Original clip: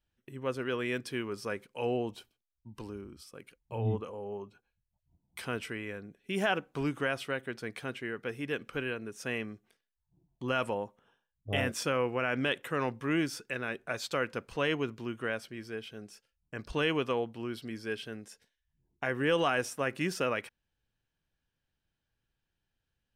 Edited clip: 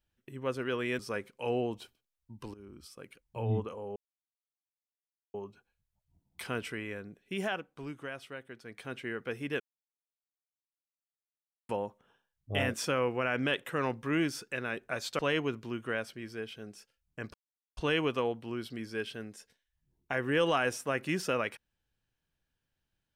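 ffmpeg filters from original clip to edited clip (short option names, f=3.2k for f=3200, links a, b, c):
-filter_complex "[0:a]asplit=10[a][b][c][d][e][f][g][h][i][j];[a]atrim=end=0.992[k];[b]atrim=start=1.348:end=2.9,asetpts=PTS-STARTPTS,afade=t=out:st=1.548:d=0.004:c=hsin:silence=0.149624[l];[c]atrim=start=2.9:end=4.32,asetpts=PTS-STARTPTS,afade=t=in:d=0.28:silence=0.149624,afade=t=out:st=1.416:d=0.004:c=hsin,apad=pad_dur=1.38[m];[d]atrim=start=4.32:end=6.63,asetpts=PTS-STARTPTS,afade=t=in:d=0.004:c=hsin,afade=t=out:st=1.88:d=0.43:silence=0.334965[n];[e]atrim=start=6.63:end=7.63,asetpts=PTS-STARTPTS,volume=-9.5dB[o];[f]atrim=start=7.63:end=8.58,asetpts=PTS-STARTPTS,afade=t=in:d=0.43:silence=0.334965,afade=t=out:st=0.946:d=0.004:c=hsin[p];[g]atrim=start=8.58:end=10.67,asetpts=PTS-STARTPTS,volume=0[q];[h]atrim=start=10.67:end=14.172,asetpts=PTS-STARTPTS,afade=t=in:d=0.004:c=hsin[r];[i]atrim=start=14.538:end=16.69,asetpts=PTS-STARTPTS,afade=t=out:st=2.148:d=0.004:c=hsin,apad=pad_dur=0.43[s];[j]atrim=start=16.69,asetpts=PTS-STARTPTS,afade=t=in:d=0.004:c=hsin[t];[l][m][n][o][p][q][r]concat=n=7:v=0:a=1[u];[k][u]acrossfade=d=0.004:c1=hsin:c2=hsin[v];[s][t]concat=n=2:v=0:a=1[w];[v][w]acrossfade=d=0.004:c1=hsin:c2=hsin"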